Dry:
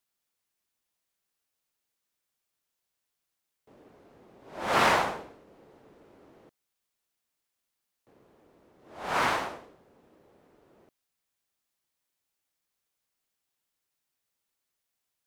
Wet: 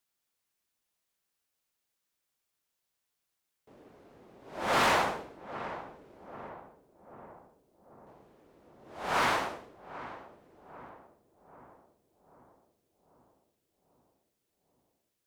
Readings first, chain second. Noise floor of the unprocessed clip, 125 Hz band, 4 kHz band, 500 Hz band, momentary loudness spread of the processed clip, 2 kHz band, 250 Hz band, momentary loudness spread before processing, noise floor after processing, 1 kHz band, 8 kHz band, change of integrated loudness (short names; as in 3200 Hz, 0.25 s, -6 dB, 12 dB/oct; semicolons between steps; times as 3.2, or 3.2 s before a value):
-84 dBFS, -1.0 dB, -0.5 dB, -1.0 dB, 24 LU, -1.5 dB, -1.0 dB, 19 LU, -84 dBFS, -1.5 dB, -0.5 dB, -4.0 dB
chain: darkening echo 0.79 s, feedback 63%, low-pass 1100 Hz, level -13.5 dB; hard clip -21.5 dBFS, distortion -12 dB